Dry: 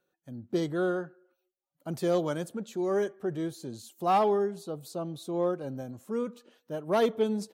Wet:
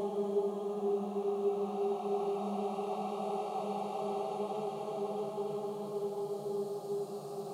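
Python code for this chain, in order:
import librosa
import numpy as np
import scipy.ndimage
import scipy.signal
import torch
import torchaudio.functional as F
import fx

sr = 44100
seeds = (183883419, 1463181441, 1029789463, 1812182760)

y = fx.env_flanger(x, sr, rest_ms=7.9, full_db=-26.0)
y = fx.echo_split(y, sr, split_hz=380.0, low_ms=217, high_ms=439, feedback_pct=52, wet_db=-5.0)
y = fx.paulstretch(y, sr, seeds[0], factor=14.0, window_s=0.5, from_s=4.35)
y = F.gain(torch.from_numpy(y), -7.5).numpy()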